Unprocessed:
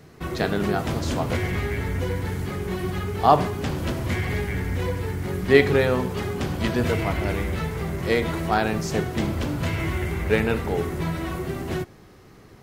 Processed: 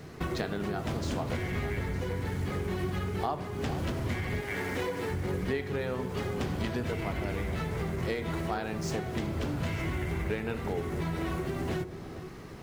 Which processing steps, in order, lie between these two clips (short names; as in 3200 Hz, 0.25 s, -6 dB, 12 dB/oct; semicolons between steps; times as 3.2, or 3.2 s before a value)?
median filter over 3 samples; 4.4–5.1 HPF 460 Hz -> 190 Hz 12 dB/oct; compressor 12:1, threshold -32 dBFS, peak gain reduction 23 dB; echo with dull and thin repeats by turns 0.456 s, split 930 Hz, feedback 51%, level -10.5 dB; gain +3 dB